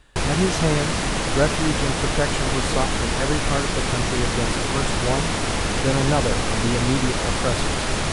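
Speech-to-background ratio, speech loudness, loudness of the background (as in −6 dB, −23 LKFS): −3.0 dB, −26.5 LKFS, −23.5 LKFS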